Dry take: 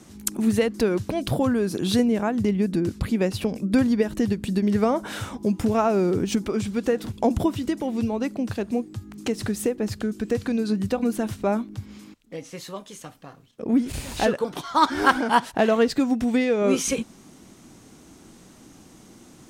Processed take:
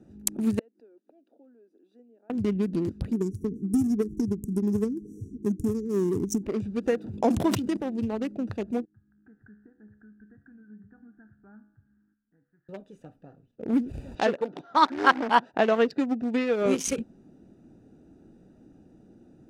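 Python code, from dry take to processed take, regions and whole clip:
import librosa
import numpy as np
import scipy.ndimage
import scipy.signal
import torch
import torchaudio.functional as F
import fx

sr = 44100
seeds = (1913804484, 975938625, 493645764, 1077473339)

y = fx.chain(x, sr, fx.steep_highpass(hz=250.0, slope=48),
    fx.gate_flip(shuts_db=-27.0, range_db=-28), at=(0.59, 2.3))
y = fx.chain(y, sr, fx.brickwall_bandstop(low_hz=460.0, high_hz=5300.0),
    fx.high_shelf(hz=6300.0, db=9.5), at=(3.13, 6.43))
y = fx.chain(y, sr, fx.highpass(hz=93.0, slope=12),
    fx.sustainer(db_per_s=51.0), at=(6.98, 7.77))
y = fx.chain(y, sr, fx.ladder_lowpass(hz=1700.0, resonance_pct=80),
    fx.fixed_phaser(hz=1300.0, stages=4),
    fx.comb_fb(f0_hz=70.0, decay_s=0.8, harmonics='all', damping=0.0, mix_pct=70), at=(8.85, 12.69))
y = fx.chain(y, sr, fx.bandpass_edges(low_hz=190.0, high_hz=6800.0),
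    fx.air_absorb(metres=51.0), at=(14.15, 16.66))
y = fx.wiener(y, sr, points=41)
y = fx.low_shelf(y, sr, hz=350.0, db=-5.0)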